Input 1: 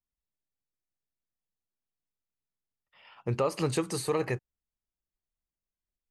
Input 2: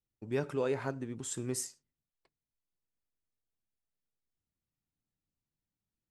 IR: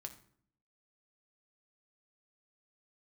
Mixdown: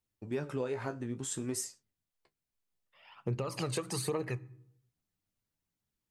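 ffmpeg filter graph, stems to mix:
-filter_complex "[0:a]highpass=94,aphaser=in_gain=1:out_gain=1:delay=2:decay=0.52:speed=1.2:type=triangular,volume=-2.5dB,asplit=2[link_01][link_02];[link_02]volume=-6dB[link_03];[1:a]acontrast=71,flanger=delay=9.4:depth=8.2:regen=41:speed=0.56:shape=sinusoidal,volume=-1dB,asplit=2[link_04][link_05];[link_05]apad=whole_len=269205[link_06];[link_01][link_06]sidechaincompress=threshold=-49dB:ratio=8:attack=16:release=1430[link_07];[2:a]atrim=start_sample=2205[link_08];[link_03][link_08]afir=irnorm=-1:irlink=0[link_09];[link_07][link_04][link_09]amix=inputs=3:normalize=0,acompressor=threshold=-31dB:ratio=6"

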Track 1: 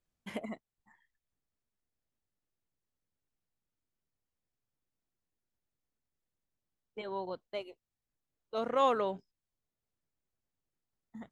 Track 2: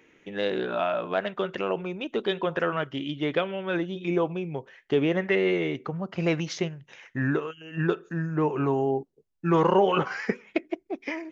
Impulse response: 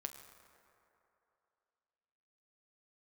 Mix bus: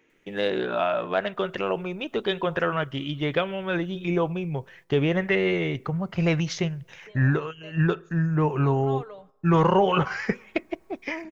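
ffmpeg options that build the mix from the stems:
-filter_complex "[0:a]aecho=1:1:6.7:0.77,acompressor=mode=upward:threshold=-31dB:ratio=2.5,adelay=100,volume=-14.5dB,asplit=2[link_01][link_02];[link_02]volume=-9.5dB[link_03];[1:a]asubboost=boost=6:cutoff=110,volume=2dB,asplit=2[link_04][link_05];[link_05]volume=-22dB[link_06];[2:a]atrim=start_sample=2205[link_07];[link_03][link_06]amix=inputs=2:normalize=0[link_08];[link_08][link_07]afir=irnorm=-1:irlink=0[link_09];[link_01][link_04][link_09]amix=inputs=3:normalize=0,agate=range=-8dB:threshold=-52dB:ratio=16:detection=peak"

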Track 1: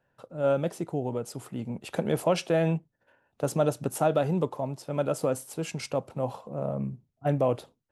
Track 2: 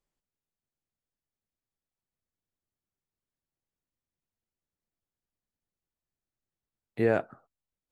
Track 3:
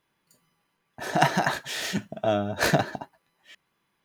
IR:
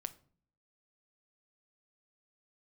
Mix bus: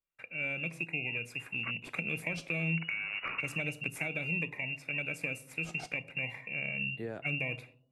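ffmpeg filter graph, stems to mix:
-filter_complex "[0:a]agate=range=-33dB:threshold=-56dB:ratio=3:detection=peak,volume=-0.5dB,asplit=2[link_01][link_02];[link_02]volume=-8dB[link_03];[1:a]volume=-13dB[link_04];[2:a]bandreject=frequency=50:width_type=h:width=6,bandreject=frequency=100:width_type=h:width=6,bandreject=frequency=150:width_type=h:width=6,bandreject=frequency=200:width_type=h:width=6,bandreject=frequency=250:width_type=h:width=6,bandreject=frequency=300:width_type=h:width=6,acrusher=bits=6:dc=4:mix=0:aa=0.000001,adelay=650,volume=1.5dB,asplit=3[link_05][link_06][link_07];[link_05]atrim=end=1.71,asetpts=PTS-STARTPTS,afade=type=out:start_time=1.706:duration=0.004:curve=hsin[link_08];[link_06]atrim=start=1.71:end=2.73,asetpts=PTS-STARTPTS,volume=0[link_09];[link_07]atrim=start=2.73,asetpts=PTS-STARTPTS,afade=type=in:duration=0.004:curve=hsin[link_10];[link_08][link_09][link_10]concat=n=3:v=0:a=1[link_11];[link_01][link_11]amix=inputs=2:normalize=0,lowpass=frequency=2500:width_type=q:width=0.5098,lowpass=frequency=2500:width_type=q:width=0.6013,lowpass=frequency=2500:width_type=q:width=0.9,lowpass=frequency=2500:width_type=q:width=2.563,afreqshift=-2900,acompressor=threshold=-28dB:ratio=6,volume=0dB[link_12];[3:a]atrim=start_sample=2205[link_13];[link_03][link_13]afir=irnorm=-1:irlink=0[link_14];[link_04][link_12][link_14]amix=inputs=3:normalize=0,equalizer=frequency=3600:width=5.8:gain=4,acrossover=split=310|3000[link_15][link_16][link_17];[link_16]acompressor=threshold=-39dB:ratio=6[link_18];[link_15][link_18][link_17]amix=inputs=3:normalize=0"

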